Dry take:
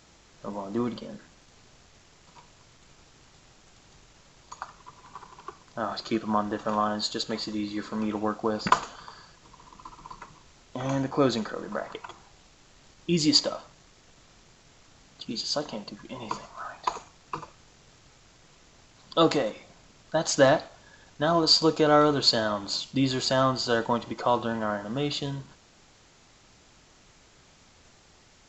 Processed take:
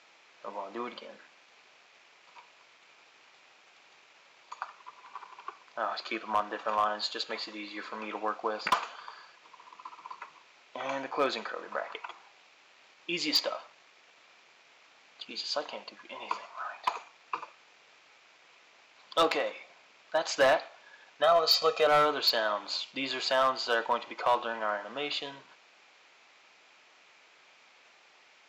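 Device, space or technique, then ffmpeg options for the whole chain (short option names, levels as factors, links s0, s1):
megaphone: -filter_complex "[0:a]highpass=600,lowpass=4000,equalizer=f=2400:t=o:w=0.39:g=7,asoftclip=type=hard:threshold=0.126,asettb=1/sr,asplit=3[s0][s1][s2];[s0]atrim=end=21.224[s3];[s1]atrim=start=21.22:end=21.87,asetpts=PTS-STARTPTS,afade=t=in:d=0.004:c=qsin,afade=t=out:st=0.646:d=0.004:c=qsin,aecho=1:1:1.6:0.79,atrim=end_sample=28665[s4];[s2]atrim=start=21.866[s5];[s3][s4]acrossfade=d=0.004:c1=hsin:c2=qsin[s6];[s6][s5]acrossfade=d=0.004:c1=qsin:c2=hsin"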